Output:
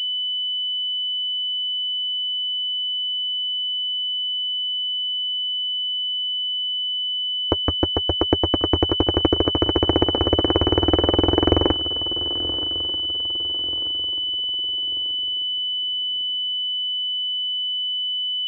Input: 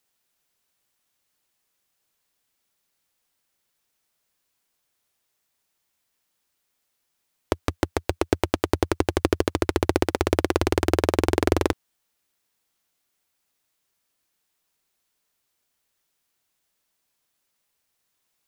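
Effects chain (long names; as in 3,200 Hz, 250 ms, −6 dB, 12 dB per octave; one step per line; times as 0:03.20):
notch comb filter 200 Hz
on a send: feedback echo with a long and a short gap by turns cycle 1,237 ms, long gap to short 3 to 1, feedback 37%, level −16 dB
0:07.69–0:08.63: on the sum: bad sample-rate conversion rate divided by 6×, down filtered, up hold
switching amplifier with a slow clock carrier 3,000 Hz
level +4 dB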